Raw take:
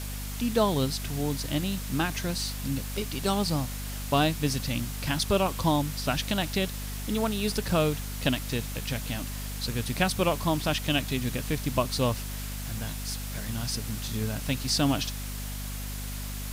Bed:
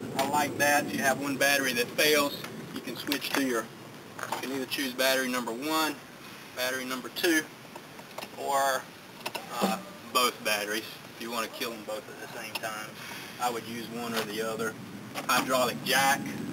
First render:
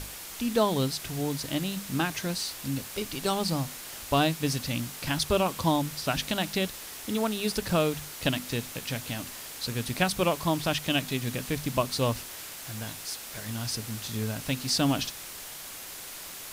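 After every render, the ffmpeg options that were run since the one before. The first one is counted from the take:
-af "bandreject=f=50:t=h:w=6,bandreject=f=100:t=h:w=6,bandreject=f=150:t=h:w=6,bandreject=f=200:t=h:w=6,bandreject=f=250:t=h:w=6"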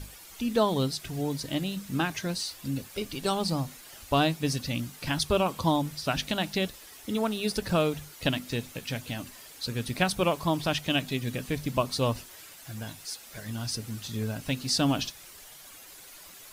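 -af "afftdn=nr=10:nf=-42"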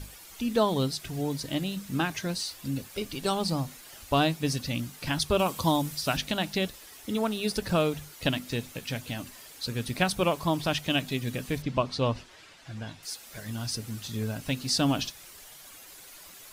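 -filter_complex "[0:a]asettb=1/sr,asplit=3[s0][s1][s2];[s0]atrim=end=5.394[s3];[s1]atrim=start=5.39:end=6.17,asetpts=PTS-STARTPTS,afade=t=in:d=0.004:c=qsin,afade=t=out:st=0.776:d=0.004:c=qsin,highshelf=f=5000:g=8[s4];[s2]atrim=start=6.166[s5];[s3][s4]acrossfade=d=0.004:c1=hsin:c2=qsin[s6];[s6][s5]acrossfade=d=0.004:c1=qsin:c2=hsin,asettb=1/sr,asplit=3[s7][s8][s9];[s7]atrim=end=11.624[s10];[s8]atrim=start=11.62:end=13.03,asetpts=PTS-STARTPTS,afade=t=in:d=0.004:c=qsin,afade=t=out:st=1.406:d=0.004:c=qsin,lowpass=4500[s11];[s9]atrim=start=13.026[s12];[s10][s11]acrossfade=d=0.004:c1=hsin:c2=qsin[s13];[s13][s12]acrossfade=d=0.004:c1=qsin:c2=hsin"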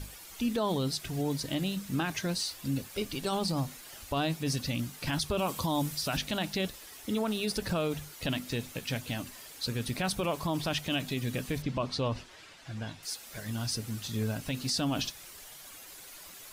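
-af "alimiter=limit=0.0841:level=0:latency=1:release=17"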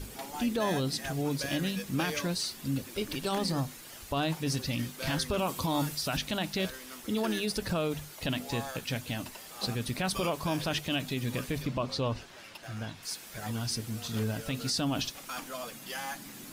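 -filter_complex "[1:a]volume=0.2[s0];[0:a][s0]amix=inputs=2:normalize=0"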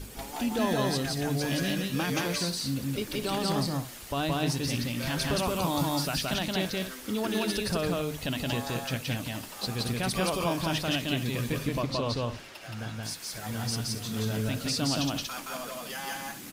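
-af "aecho=1:1:172|236.2:0.891|0.251"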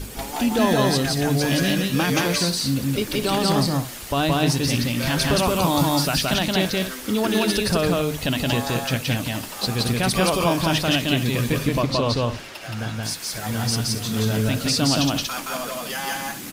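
-af "volume=2.66"

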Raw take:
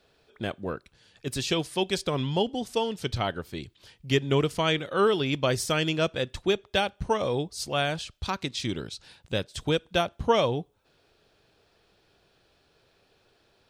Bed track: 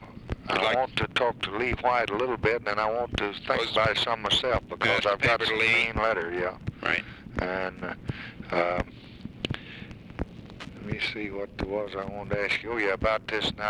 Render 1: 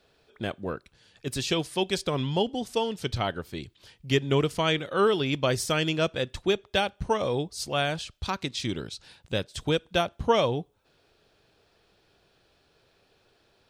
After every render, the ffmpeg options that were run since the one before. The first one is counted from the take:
-af anull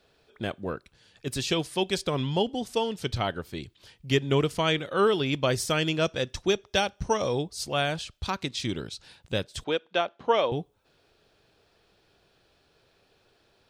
-filter_complex "[0:a]asettb=1/sr,asplit=3[s0][s1][s2];[s0]atrim=end=6.054[s3];[s1]atrim=start=6.05:end=7.42,asetpts=PTS-STARTPTS,afade=t=in:d=0.004:c=qsin,afade=t=out:st=1.366:d=0.004:c=qsin,equalizer=f=5700:t=o:w=0.3:g=11.5[s4];[s2]atrim=start=7.416[s5];[s3][s4]acrossfade=d=0.004:c1=hsin:c2=qsin[s6];[s6][s5]acrossfade=d=0.004:c1=qsin:c2=hsin,asettb=1/sr,asplit=3[s7][s8][s9];[s7]atrim=end=9.644[s10];[s8]atrim=start=9.64:end=10.52,asetpts=PTS-STARTPTS,afade=t=in:d=0.004:c=qsin,afade=t=out:st=0.876:d=0.004:c=qsin,highpass=350,lowpass=3700[s11];[s9]atrim=start=10.516[s12];[s10][s11]acrossfade=d=0.004:c1=hsin:c2=qsin[s13];[s13][s12]acrossfade=d=0.004:c1=qsin:c2=hsin"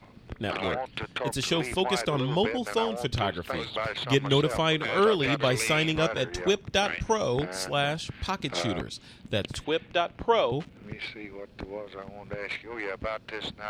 -filter_complex "[1:a]volume=0.422[s0];[0:a][s0]amix=inputs=2:normalize=0"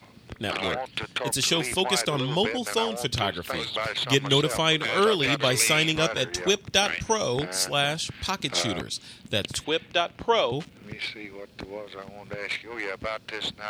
-af "highpass=66,highshelf=f=3300:g=11.5"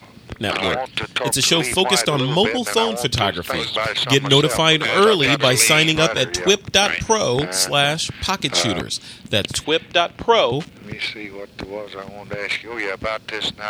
-af "volume=2.37,alimiter=limit=0.891:level=0:latency=1"

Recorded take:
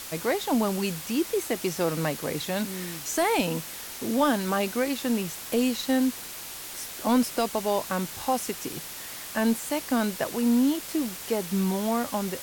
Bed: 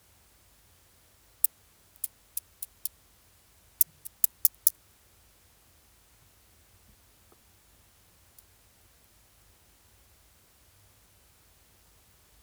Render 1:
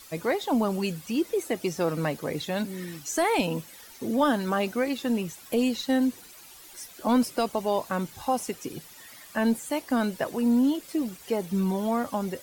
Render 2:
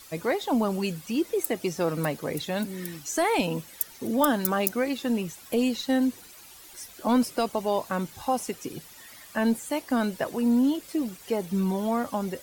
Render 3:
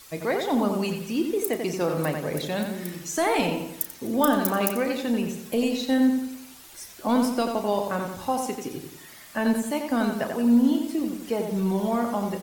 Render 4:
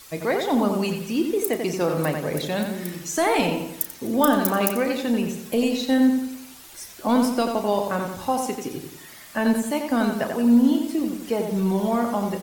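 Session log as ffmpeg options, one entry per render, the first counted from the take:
-af "afftdn=nr=13:nf=-39"
-filter_complex "[1:a]volume=0.473[s0];[0:a][s0]amix=inputs=2:normalize=0"
-filter_complex "[0:a]asplit=2[s0][s1];[s1]adelay=34,volume=0.266[s2];[s0][s2]amix=inputs=2:normalize=0,asplit=2[s3][s4];[s4]adelay=89,lowpass=f=3700:p=1,volume=0.562,asplit=2[s5][s6];[s6]adelay=89,lowpass=f=3700:p=1,volume=0.47,asplit=2[s7][s8];[s8]adelay=89,lowpass=f=3700:p=1,volume=0.47,asplit=2[s9][s10];[s10]adelay=89,lowpass=f=3700:p=1,volume=0.47,asplit=2[s11][s12];[s12]adelay=89,lowpass=f=3700:p=1,volume=0.47,asplit=2[s13][s14];[s14]adelay=89,lowpass=f=3700:p=1,volume=0.47[s15];[s3][s5][s7][s9][s11][s13][s15]amix=inputs=7:normalize=0"
-af "volume=1.33"

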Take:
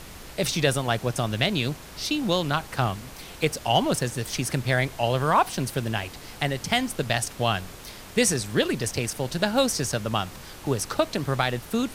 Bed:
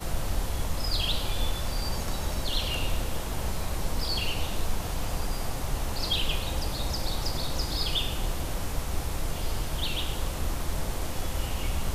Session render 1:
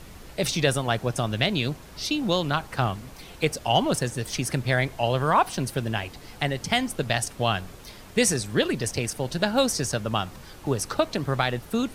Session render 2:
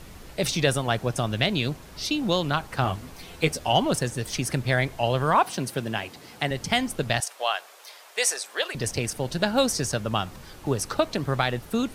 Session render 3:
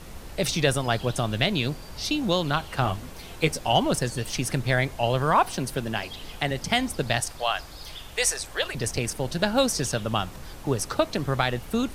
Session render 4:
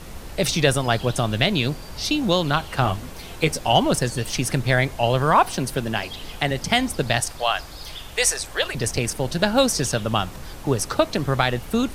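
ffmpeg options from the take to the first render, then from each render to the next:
-af "afftdn=nr=6:nf=-43"
-filter_complex "[0:a]asettb=1/sr,asplit=3[s0][s1][s2];[s0]atrim=end=2.834[s3];[s1]atrim=start=2.83:end=3.73,asetpts=PTS-STARTPTS,afade=t=in:d=0.004:c=qsin,afade=t=out:st=0.896:d=0.004:c=qsin,asplit=2[s4][s5];[s5]adelay=12,volume=0.501[s6];[s4][s6]amix=inputs=2:normalize=0,atrim=end_sample=39690[s7];[s2]atrim=start=3.726[s8];[s3][s7]acrossfade=d=0.004:c1=hsin:c2=qsin[s9];[s9][s8]acrossfade=d=0.004:c1=qsin:c2=hsin,asettb=1/sr,asplit=3[s10][s11][s12];[s10]atrim=end=5.354[s13];[s11]atrim=start=5.35:end=6.51,asetpts=PTS-STARTPTS,afade=t=in:d=0.004:c=qsin,afade=t=out:st=1.156:d=0.004:c=qsin,highpass=140[s14];[s12]atrim=start=6.506[s15];[s13][s14]acrossfade=d=0.004:c1=hsin:c2=qsin[s16];[s16][s15]acrossfade=d=0.004:c1=qsin:c2=hsin,asettb=1/sr,asplit=3[s17][s18][s19];[s17]atrim=end=7.204[s20];[s18]atrim=start=7.2:end=8.75,asetpts=PTS-STARTPTS,afade=t=in:d=0.004:c=qsin,afade=t=out:st=1.546:d=0.004:c=qsin,highpass=f=570:w=0.5412,highpass=f=570:w=1.3066[s21];[s19]atrim=start=8.746[s22];[s20][s21]acrossfade=d=0.004:c1=hsin:c2=qsin[s23];[s23][s22]acrossfade=d=0.004:c1=qsin:c2=hsin"
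-filter_complex "[1:a]volume=0.211[s0];[0:a][s0]amix=inputs=2:normalize=0"
-af "volume=1.58,alimiter=limit=0.708:level=0:latency=1"

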